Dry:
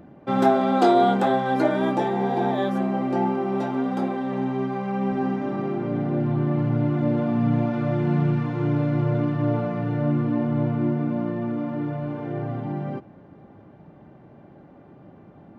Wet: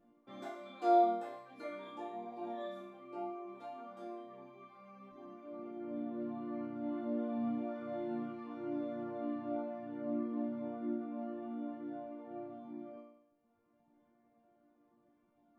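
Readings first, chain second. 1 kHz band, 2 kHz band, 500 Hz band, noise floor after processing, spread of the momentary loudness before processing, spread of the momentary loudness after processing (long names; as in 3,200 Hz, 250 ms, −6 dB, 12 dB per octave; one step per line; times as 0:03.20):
−14.0 dB, −21.5 dB, −14.5 dB, −73 dBFS, 9 LU, 13 LU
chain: reverb reduction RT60 1.7 s
resonators tuned to a chord A#3 major, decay 0.75 s
level +3 dB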